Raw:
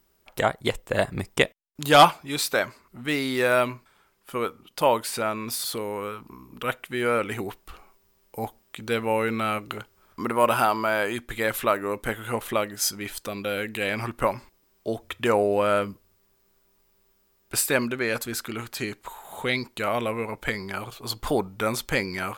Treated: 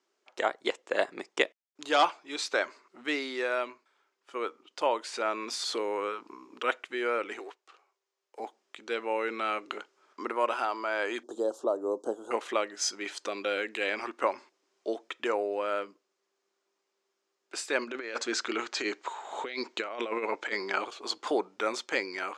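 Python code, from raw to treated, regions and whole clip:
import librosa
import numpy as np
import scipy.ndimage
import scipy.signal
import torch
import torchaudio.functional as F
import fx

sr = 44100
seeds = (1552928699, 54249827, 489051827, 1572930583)

y = fx.chain(x, sr, fx.law_mismatch(coded='A'),
    fx.highpass(hz=370.0, slope=24), at=(7.39, 8.4))
y = fx.chain(y, sr, fx.cheby1_bandstop(low_hz=680.0, high_hz=6400.0, order=2),
    fx.high_shelf(hz=5500.0, db=-7.5),
    fx.band_squash(depth_pct=40), at=(11.23, 12.31))
y = fx.chain(y, sr, fx.lowpass(hz=7800.0, slope=24),
    fx.over_compress(threshold_db=-30.0, ratio=-0.5), at=(17.84, 20.85))
y = scipy.signal.sosfilt(scipy.signal.ellip(3, 1.0, 60, [320.0, 6800.0], 'bandpass', fs=sr, output='sos'), y)
y = fx.rider(y, sr, range_db=5, speed_s=0.5)
y = y * 10.0 ** (-4.5 / 20.0)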